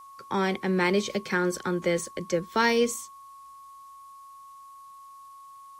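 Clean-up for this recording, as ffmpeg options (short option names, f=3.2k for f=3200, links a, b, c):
-af "adeclick=t=4,bandreject=f=1.1k:w=30,agate=range=-21dB:threshold=-40dB"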